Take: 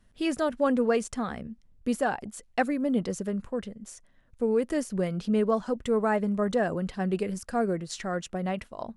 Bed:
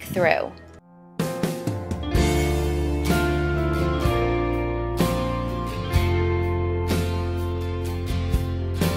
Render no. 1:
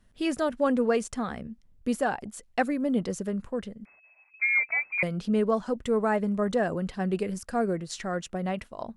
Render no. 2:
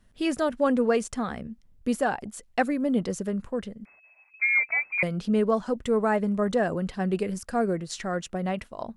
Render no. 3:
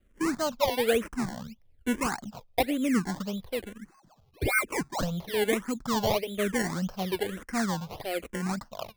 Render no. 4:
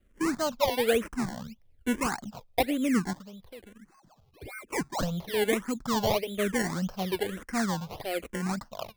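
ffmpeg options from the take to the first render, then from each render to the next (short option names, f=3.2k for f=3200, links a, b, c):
-filter_complex "[0:a]asettb=1/sr,asplit=3[a][b][c];[a]atrim=end=3.854[d];[b]atrim=start=3.85:end=5.03,asetpts=PTS-STARTPTS,afade=t=in:d=0.004:c=qsin,afade=t=out:st=1.176:d=0.004:c=qsin,lowpass=f=2.2k:t=q:w=0.5098,lowpass=f=2.2k:t=q:w=0.6013,lowpass=f=2.2k:t=q:w=0.9,lowpass=f=2.2k:t=q:w=2.563,afreqshift=-2600[e];[c]atrim=start=5.026[f];[d][e]acrossfade=d=0.004:c1=hsin:c2=qsin[g];[g][f]acrossfade=d=0.004:c1=qsin:c2=hsin"
-af "volume=1.5dB"
-filter_complex "[0:a]acrusher=samples=24:mix=1:aa=0.000001:lfo=1:lforange=24:lforate=1.7,asplit=2[a][b];[b]afreqshift=-1.1[c];[a][c]amix=inputs=2:normalize=1"
-filter_complex "[0:a]asettb=1/sr,asplit=3[a][b][c];[a]atrim=end=3.134[d];[b]atrim=start=3.13:end=4.73,asetpts=PTS-STARTPTS,afade=t=in:d=0.004:c=qsin,afade=t=out:st=1.596:d=0.004:c=qsin,acompressor=threshold=-53dB:ratio=2:attack=3.2:release=140:knee=1:detection=peak[e];[c]atrim=start=4.726[f];[d][e]acrossfade=d=0.004:c1=hsin:c2=qsin[g];[g][f]acrossfade=d=0.004:c1=qsin:c2=hsin"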